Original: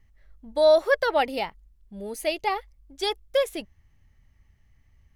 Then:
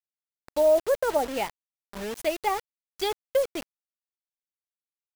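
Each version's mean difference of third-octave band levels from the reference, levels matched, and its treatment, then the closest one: 7.5 dB: low-pass that closes with the level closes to 660 Hz, closed at -17.5 dBFS; bit crusher 6-bit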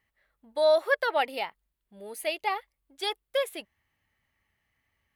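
2.0 dB: high-pass 820 Hz 6 dB/octave; peaking EQ 6 kHz -9.5 dB 0.73 oct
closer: second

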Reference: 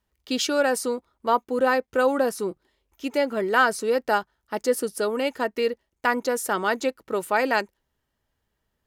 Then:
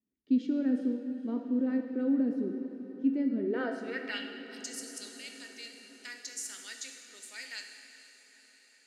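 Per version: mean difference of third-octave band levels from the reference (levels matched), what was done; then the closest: 10.5 dB: ten-band graphic EQ 125 Hz +3 dB, 250 Hz +11 dB, 1 kHz -9 dB, 2 kHz +11 dB, 4 kHz +8 dB, 8 kHz +5 dB; band-pass sweep 270 Hz -> 6.7 kHz, 3.42–4.42 s; echo that smears into a reverb 469 ms, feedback 62%, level -13.5 dB; gated-style reverb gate 480 ms falling, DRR 4 dB; trim -8.5 dB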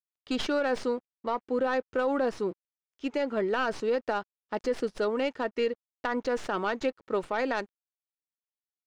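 4.5 dB: tracing distortion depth 0.13 ms; peak limiter -16.5 dBFS, peak gain reduction 9 dB; crossover distortion -56 dBFS; distance through air 120 m; trim -2 dB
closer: second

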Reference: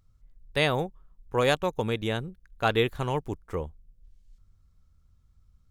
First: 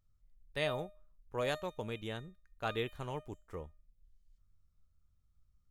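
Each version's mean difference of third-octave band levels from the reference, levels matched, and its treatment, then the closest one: 1.5 dB: feedback comb 610 Hz, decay 0.37 s, mix 80%; trim +1 dB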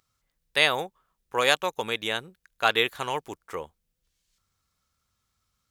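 6.0 dB: high-pass 1.4 kHz 6 dB/octave; trim +7.5 dB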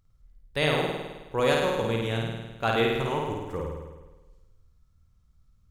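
8.0 dB: flutter echo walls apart 9 m, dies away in 1.2 s; trim -2.5 dB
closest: first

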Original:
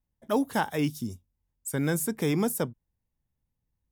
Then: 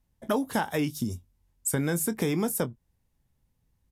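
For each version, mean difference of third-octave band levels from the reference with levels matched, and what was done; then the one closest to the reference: 2.5 dB: compression 5:1, threshold -34 dBFS, peak gain reduction 12 dB; doubling 23 ms -13.5 dB; resampled via 32 kHz; trim +9 dB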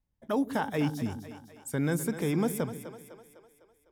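6.0 dB: treble shelf 5.5 kHz -9 dB; peak limiter -21 dBFS, peak gain reduction 6.5 dB; two-band feedback delay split 370 Hz, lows 132 ms, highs 252 ms, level -11 dB; trim +1 dB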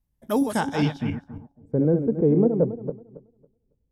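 12.0 dB: backward echo that repeats 138 ms, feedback 45%, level -6.5 dB; bass shelf 290 Hz +7 dB; low-pass sweep 13 kHz -> 510 Hz, 0.42–1.66 s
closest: first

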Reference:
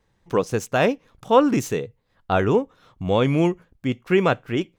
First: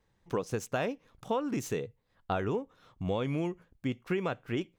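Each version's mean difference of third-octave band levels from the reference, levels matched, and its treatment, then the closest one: 2.5 dB: compression 12:1, threshold -21 dBFS, peak gain reduction 12.5 dB; trim -6 dB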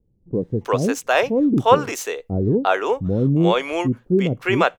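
10.5 dB: bands offset in time lows, highs 350 ms, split 430 Hz; trim +4 dB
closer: first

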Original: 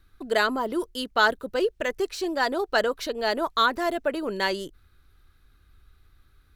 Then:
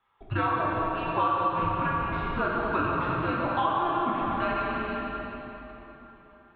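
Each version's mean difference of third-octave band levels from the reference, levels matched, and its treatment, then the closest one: 16.5 dB: mistuned SSB -340 Hz 470–3200 Hz; plate-style reverb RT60 3.8 s, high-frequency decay 0.75×, DRR -6 dB; dynamic bell 1.1 kHz, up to +6 dB, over -31 dBFS, Q 1; compression 2.5:1, threshold -24 dBFS, peak gain reduction 10.5 dB; trim -3 dB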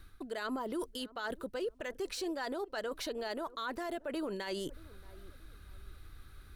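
4.5 dB: reverse; compression 12:1, threshold -36 dBFS, peak gain reduction 21 dB; reverse; peaking EQ 9.2 kHz +5.5 dB 0.23 oct; filtered feedback delay 627 ms, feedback 39%, low-pass 860 Hz, level -23.5 dB; peak limiter -35.5 dBFS, peak gain reduction 9.5 dB; trim +6 dB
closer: second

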